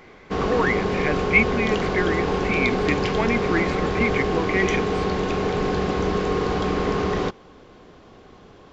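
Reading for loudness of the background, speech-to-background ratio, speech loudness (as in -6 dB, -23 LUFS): -23.5 LUFS, -1.5 dB, -25.0 LUFS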